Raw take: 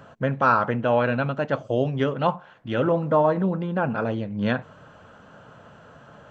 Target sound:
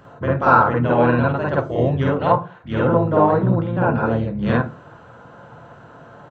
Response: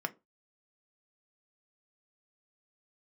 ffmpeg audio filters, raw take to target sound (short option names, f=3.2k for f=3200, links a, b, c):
-filter_complex "[0:a]asplit=2[a][b];[b]asetrate=29433,aresample=44100,atempo=1.49831,volume=-5dB[c];[a][c]amix=inputs=2:normalize=0,aeval=exprs='0.562*(cos(1*acos(clip(val(0)/0.562,-1,1)))-cos(1*PI/2))+0.00891*(cos(6*acos(clip(val(0)/0.562,-1,1)))-cos(6*PI/2))':c=same,asplit=2[d][e];[1:a]atrim=start_sample=2205,asetrate=31311,aresample=44100,adelay=50[f];[e][f]afir=irnorm=-1:irlink=0,volume=-0.5dB[g];[d][g]amix=inputs=2:normalize=0,volume=-2.5dB"